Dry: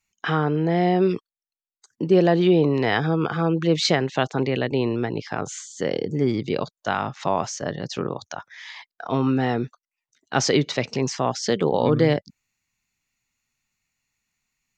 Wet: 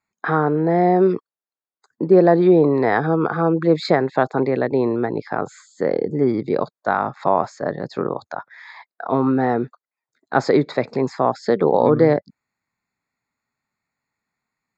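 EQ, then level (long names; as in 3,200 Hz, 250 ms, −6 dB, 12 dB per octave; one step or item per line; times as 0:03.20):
moving average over 15 samples
high-pass filter 340 Hz 6 dB per octave
+7.5 dB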